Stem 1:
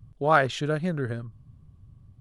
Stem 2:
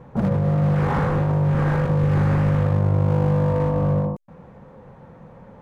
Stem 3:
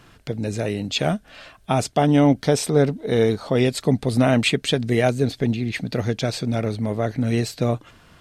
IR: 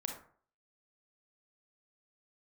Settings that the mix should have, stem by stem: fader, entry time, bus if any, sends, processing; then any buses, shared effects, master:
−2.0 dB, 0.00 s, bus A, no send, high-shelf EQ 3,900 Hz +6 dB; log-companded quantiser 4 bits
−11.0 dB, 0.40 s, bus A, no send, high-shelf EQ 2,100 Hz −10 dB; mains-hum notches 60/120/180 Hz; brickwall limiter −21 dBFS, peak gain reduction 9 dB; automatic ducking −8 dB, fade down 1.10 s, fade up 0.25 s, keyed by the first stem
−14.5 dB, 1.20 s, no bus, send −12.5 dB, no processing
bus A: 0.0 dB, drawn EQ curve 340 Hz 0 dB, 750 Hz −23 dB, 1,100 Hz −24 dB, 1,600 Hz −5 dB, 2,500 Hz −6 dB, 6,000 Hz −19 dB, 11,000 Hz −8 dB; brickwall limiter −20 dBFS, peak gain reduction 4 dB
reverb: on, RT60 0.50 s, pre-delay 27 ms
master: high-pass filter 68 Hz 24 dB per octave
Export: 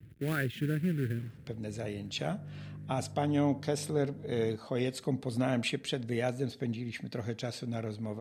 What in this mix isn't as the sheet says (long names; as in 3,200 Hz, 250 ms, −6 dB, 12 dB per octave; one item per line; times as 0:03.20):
stem 1: missing high-shelf EQ 3,900 Hz +6 dB
stem 2 −11.0 dB → −18.0 dB